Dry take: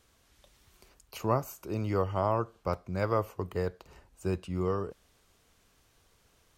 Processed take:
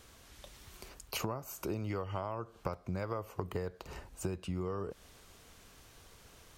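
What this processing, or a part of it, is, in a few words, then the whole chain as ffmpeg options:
serial compression, leveller first: -filter_complex "[0:a]asettb=1/sr,asplit=3[s0][s1][s2];[s0]atrim=end=1.904[s3];[s1]atrim=start=1.9:end=2.35,asetpts=PTS-STARTPTS,afade=t=in:d=0.004:c=qsin,afade=t=out:st=0.446:d=0.004:c=qsin,equalizer=f=2700:w=0.88:g=6[s4];[s2]atrim=start=2.346[s5];[s3][s4]acrossfade=d=0.004:c1=hsin:c2=qsin[s6];[s6][s5]acrossfade=d=0.004:c1=qsin:c2=hsin,acompressor=threshold=0.0224:ratio=2,acompressor=threshold=0.00794:ratio=8,volume=2.66"

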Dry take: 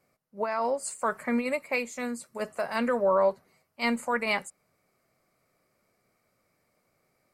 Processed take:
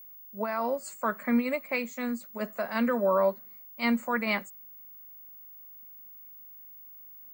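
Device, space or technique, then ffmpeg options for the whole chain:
old television with a line whistle: -af "highpass=f=180:w=0.5412,highpass=f=180:w=1.3066,equalizer=f=210:t=q:w=4:g=7,equalizer=f=440:t=q:w=4:g=-4,equalizer=f=820:t=q:w=4:g=-5,equalizer=f=2700:t=q:w=4:g=-3,equalizer=f=5300:t=q:w=4:g=-7,lowpass=f=6900:w=0.5412,lowpass=f=6900:w=1.3066,aeval=exprs='val(0)+0.00501*sin(2*PI*15625*n/s)':c=same"

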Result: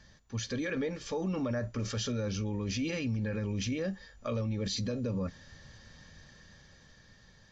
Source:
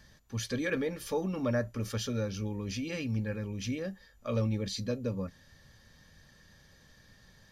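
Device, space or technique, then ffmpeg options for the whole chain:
low-bitrate web radio: -af "dynaudnorm=f=350:g=9:m=2,alimiter=level_in=1.19:limit=0.0631:level=0:latency=1:release=33,volume=0.841" -ar 16000 -c:a aac -b:a 48k

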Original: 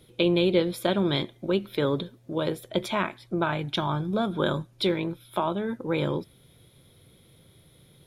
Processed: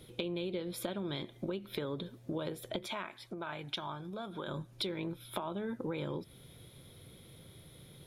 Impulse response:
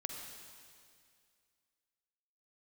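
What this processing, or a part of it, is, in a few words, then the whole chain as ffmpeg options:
serial compression, peaks first: -filter_complex "[0:a]acompressor=threshold=0.0251:ratio=5,acompressor=threshold=0.0141:ratio=2.5,asettb=1/sr,asplit=3[s0][s1][s2];[s0]atrim=end=2.874[s3];[s1]atrim=start=2.87:end=4.48,asetpts=PTS-STARTPTS,afade=t=in:d=0.004:c=qsin,afade=t=out:st=1.606:d=0.004:c=qsin,lowshelf=f=360:g=-9.5[s4];[s2]atrim=start=4.476[s5];[s3][s4]acrossfade=d=0.004:c1=hsin:c2=qsin[s6];[s6][s5]acrossfade=d=0.004:c1=qsin:c2=hsin,volume=1.19"

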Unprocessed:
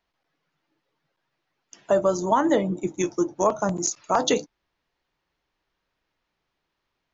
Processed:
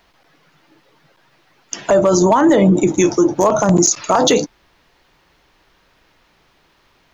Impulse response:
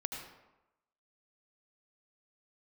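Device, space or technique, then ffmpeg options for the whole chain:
loud club master: -af "acompressor=threshold=0.0794:ratio=2,asoftclip=type=hard:threshold=0.178,alimiter=level_in=20:limit=0.891:release=50:level=0:latency=1,volume=0.631"

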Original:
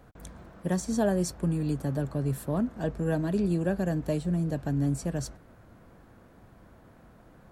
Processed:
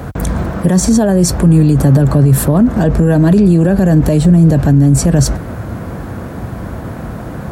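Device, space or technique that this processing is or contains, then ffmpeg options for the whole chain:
mastering chain: -af "highpass=f=44:w=0.5412,highpass=f=44:w=1.3066,equalizer=f=3300:t=o:w=1.4:g=-2.5,acompressor=threshold=0.02:ratio=1.5,alimiter=level_in=39.8:limit=0.891:release=50:level=0:latency=1,equalizer=f=96:t=o:w=2.5:g=5,volume=0.631"

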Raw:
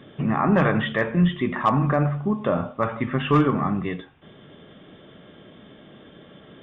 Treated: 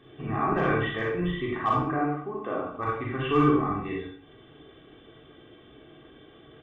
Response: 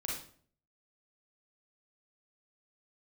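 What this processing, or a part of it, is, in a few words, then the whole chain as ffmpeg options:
microphone above a desk: -filter_complex "[0:a]asettb=1/sr,asplit=3[s0][s1][s2];[s0]atrim=end=1.774[s3];[s1]atrim=start=1.77:end=2.69,asetpts=PTS-STARTPTS,afade=t=in:d=0.004:c=qsin,afade=t=out:st=0.916:d=0.004:c=qsin,acrossover=split=200 3200:gain=0.2 1 0.0891[s4][s5][s6];[s4][s5][s6]amix=inputs=3:normalize=0[s7];[s2]atrim=start=2.686[s8];[s3][s7]acrossfade=d=0.004:c1=hsin:c2=qsin[s9];[s9][s8]acrossfade=d=0.004:c1=qsin:c2=hsin,aecho=1:1:2.6:0.68[s10];[1:a]atrim=start_sample=2205[s11];[s10][s11]afir=irnorm=-1:irlink=0,volume=0.447"

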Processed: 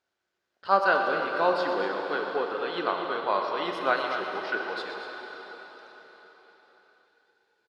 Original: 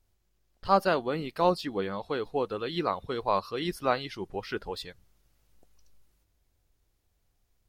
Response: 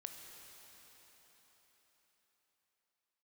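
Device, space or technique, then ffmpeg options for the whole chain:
station announcement: -filter_complex "[0:a]highpass=350,lowpass=4800,equalizer=f=1500:t=o:w=0.3:g=10,aecho=1:1:122.4|236.2:0.251|0.316[s0];[1:a]atrim=start_sample=2205[s1];[s0][s1]afir=irnorm=-1:irlink=0,volume=1.88"

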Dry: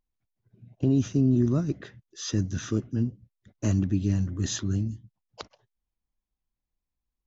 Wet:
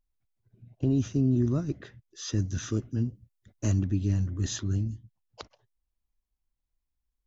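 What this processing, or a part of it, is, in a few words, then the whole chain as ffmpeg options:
low shelf boost with a cut just above: -filter_complex "[0:a]asettb=1/sr,asplit=3[s0][s1][s2];[s0]atrim=end=2.404[s3];[s1]atrim=start=2.4:end=3.72,asetpts=PTS-STARTPTS,afade=t=in:d=0.004:c=qsin,afade=t=out:st=1.316:d=0.004:c=qsin,highshelf=f=5000:g=6[s4];[s2]atrim=start=3.716[s5];[s3][s4]acrossfade=d=0.004:c1=hsin:c2=qsin[s6];[s6][s5]acrossfade=d=0.004:c1=qsin:c2=hsin,lowshelf=f=85:g=8,equalizer=f=180:t=o:w=0.59:g=-3.5,volume=0.708"

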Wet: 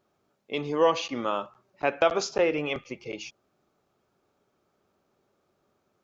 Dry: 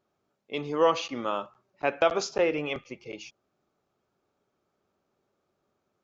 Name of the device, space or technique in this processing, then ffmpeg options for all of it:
parallel compression: -filter_complex "[0:a]asettb=1/sr,asplit=3[s0][s1][s2];[s0]atrim=end=0.714[s3];[s1]atrim=start=0.71:end=1.12,asetpts=PTS-STARTPTS,afade=t=in:d=0.004:c=qsin,afade=t=out:st=0.406:d=0.004:c=qsin,bandreject=f=1300:w=7.5[s4];[s2]atrim=start=1.116[s5];[s3][s4]acrossfade=d=0.004:c1=hsin:c2=qsin[s6];[s6][s5]acrossfade=d=0.004:c1=qsin:c2=hsin,asplit=2[s7][s8];[s8]acompressor=threshold=0.0126:ratio=6,volume=0.708[s9];[s7][s9]amix=inputs=2:normalize=0"

